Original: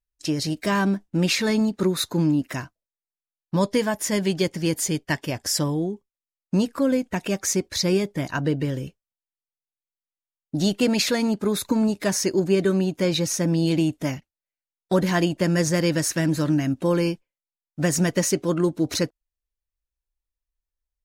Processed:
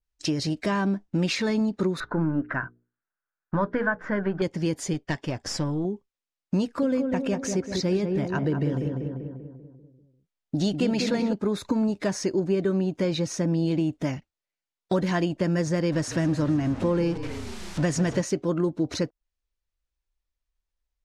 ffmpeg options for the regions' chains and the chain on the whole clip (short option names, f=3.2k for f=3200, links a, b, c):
-filter_complex "[0:a]asettb=1/sr,asplit=3[a][b][c];[a]atrim=end=2.004[d];[b]atrim=start=2:end=4.42,asetpts=PTS-STARTPTS,afade=t=in:d=0.004:c=qsin,afade=t=out:st=2.416:d=0.004:c=qsin,aeval=exprs='if(lt(val(0),0),0.708*val(0),val(0))':c=same,lowpass=f=1.5k:t=q:w=6.4,bandreject=f=60:t=h:w=6,bandreject=f=120:t=h:w=6,bandreject=f=180:t=h:w=6,bandreject=f=240:t=h:w=6,bandreject=f=300:t=h:w=6,bandreject=f=360:t=h:w=6,bandreject=f=420:t=h:w=6,bandreject=f=480:t=h:w=6[e];[c]atrim=start=4.416[f];[d][e]acrossfade=d=0.004:c1=hsin:c2=qsin[g];[g][f]acrossfade=d=0.004:c1=qsin:c2=hsin,asettb=1/sr,asplit=3[h][i][j];[h]atrim=end=4.934[k];[i]atrim=start=4.93:end=5.85,asetpts=PTS-STARTPTS,afade=t=in:d=0.004:c=qsin,afade=t=out:st=0.916:d=0.004:c=qsin,lowpass=9.7k,aeval=exprs='(tanh(5.62*val(0)+0.55)-tanh(0.55))/5.62':c=same[l];[j]atrim=start=5.846[m];[k][l]acrossfade=d=0.004:c1=hsin:c2=qsin[n];[n][m]acrossfade=d=0.004:c1=qsin:c2=hsin,asettb=1/sr,asplit=3[o][p][q];[o]atrim=end=6.634[r];[p]atrim=start=6.63:end=11.33,asetpts=PTS-STARTPTS,afade=t=in:d=0.004:c=qsin,afade=t=out:st=4.696:d=0.004:c=qsin,bandreject=f=1.1k:w=18,asplit=2[s][t];[t]adelay=195,lowpass=f=1.4k:p=1,volume=-5dB,asplit=2[u][v];[v]adelay=195,lowpass=f=1.4k:p=1,volume=0.53,asplit=2[w][x];[x]adelay=195,lowpass=f=1.4k:p=1,volume=0.53,asplit=2[y][z];[z]adelay=195,lowpass=f=1.4k:p=1,volume=0.53,asplit=2[aa][ab];[ab]adelay=195,lowpass=f=1.4k:p=1,volume=0.53,asplit=2[ac][ad];[ad]adelay=195,lowpass=f=1.4k:p=1,volume=0.53,asplit=2[ae][af];[af]adelay=195,lowpass=f=1.4k:p=1,volume=0.53[ag];[s][u][w][y][aa][ac][ae][ag]amix=inputs=8:normalize=0,atrim=end_sample=207270[ah];[q]atrim=start=11.326[ai];[r][ah]acrossfade=d=0.004:c1=hsin:c2=qsin[aj];[aj][ai]acrossfade=d=0.004:c1=qsin:c2=hsin,asettb=1/sr,asplit=3[ak][al][am];[ak]atrim=end=15.924[an];[al]atrim=start=15.92:end=18.22,asetpts=PTS-STARTPTS,afade=t=in:d=0.004:c=qsin,afade=t=out:st=2.296:d=0.004:c=qsin,aeval=exprs='val(0)+0.5*0.0355*sgn(val(0))':c=same,lowpass=12k,asplit=7[ao][ap][aq][ar][as][at][au];[ap]adelay=154,afreqshift=-34,volume=-16dB[av];[aq]adelay=308,afreqshift=-68,volume=-20dB[aw];[ar]adelay=462,afreqshift=-102,volume=-24dB[ax];[as]adelay=616,afreqshift=-136,volume=-28dB[ay];[at]adelay=770,afreqshift=-170,volume=-32.1dB[az];[au]adelay=924,afreqshift=-204,volume=-36.1dB[ba];[ao][av][aw][ax][ay][az][ba]amix=inputs=7:normalize=0,atrim=end_sample=101430[bb];[am]atrim=start=18.216[bc];[an][bb]acrossfade=d=0.004:c1=hsin:c2=qsin[bd];[bd][bc]acrossfade=d=0.004:c1=qsin:c2=hsin,lowpass=6.5k,acompressor=threshold=-30dB:ratio=2,adynamicequalizer=threshold=0.00447:dfrequency=1600:dqfactor=0.7:tfrequency=1600:tqfactor=0.7:attack=5:release=100:ratio=0.375:range=3.5:mode=cutabove:tftype=highshelf,volume=3.5dB"